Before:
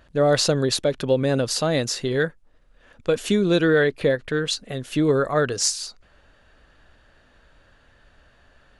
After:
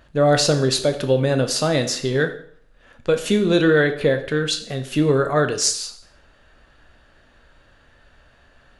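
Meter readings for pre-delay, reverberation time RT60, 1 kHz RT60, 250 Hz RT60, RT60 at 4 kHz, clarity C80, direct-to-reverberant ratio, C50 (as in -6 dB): 5 ms, 0.60 s, 0.60 s, 0.55 s, 0.55 s, 14.5 dB, 6.0 dB, 11.0 dB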